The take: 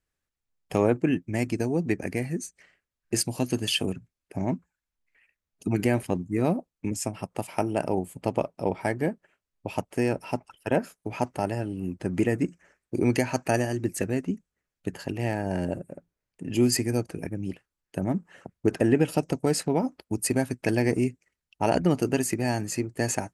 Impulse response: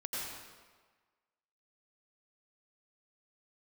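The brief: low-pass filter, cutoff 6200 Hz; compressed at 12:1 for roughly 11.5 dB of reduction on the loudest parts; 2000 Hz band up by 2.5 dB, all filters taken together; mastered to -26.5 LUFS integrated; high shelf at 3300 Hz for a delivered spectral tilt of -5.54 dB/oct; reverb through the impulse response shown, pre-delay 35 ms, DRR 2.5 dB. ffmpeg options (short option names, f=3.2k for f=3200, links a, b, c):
-filter_complex "[0:a]lowpass=6.2k,equalizer=f=2k:t=o:g=4.5,highshelf=f=3.3k:g=-4.5,acompressor=threshold=-28dB:ratio=12,asplit=2[a][b];[1:a]atrim=start_sample=2205,adelay=35[c];[b][c]afir=irnorm=-1:irlink=0,volume=-5dB[d];[a][d]amix=inputs=2:normalize=0,volume=7.5dB"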